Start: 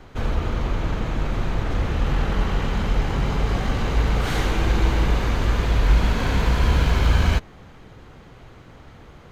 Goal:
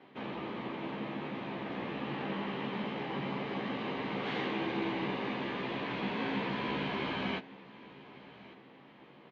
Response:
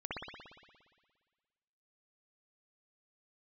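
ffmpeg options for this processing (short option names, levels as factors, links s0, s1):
-filter_complex "[0:a]highpass=f=190:w=0.5412,highpass=f=190:w=1.3066,equalizer=f=480:t=q:w=4:g=-3,equalizer=f=690:t=q:w=4:g=-3,equalizer=f=1400:t=q:w=4:g=-10,lowpass=f=3400:w=0.5412,lowpass=f=3400:w=1.3066,asplit=2[s0][s1];[s1]adelay=15,volume=0.596[s2];[s0][s2]amix=inputs=2:normalize=0,asplit=2[s3][s4];[s4]aecho=0:1:1153|2306|3459:0.106|0.0392|0.0145[s5];[s3][s5]amix=inputs=2:normalize=0,volume=0.422"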